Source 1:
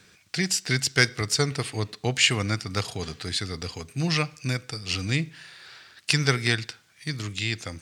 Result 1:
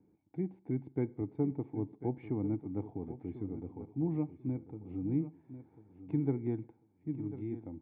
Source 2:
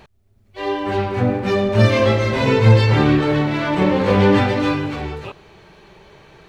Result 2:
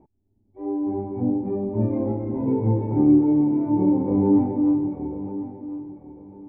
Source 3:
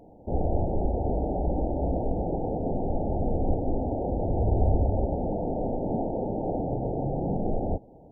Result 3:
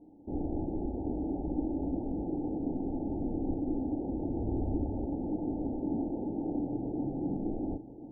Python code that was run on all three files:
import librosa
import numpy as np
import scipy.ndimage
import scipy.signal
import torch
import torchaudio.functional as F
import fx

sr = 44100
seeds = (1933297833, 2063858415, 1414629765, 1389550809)

y = fx.formant_cascade(x, sr, vowel='u')
y = fx.echo_feedback(y, sr, ms=1045, feedback_pct=25, wet_db=-13.0)
y = y * 10.0 ** (3.0 / 20.0)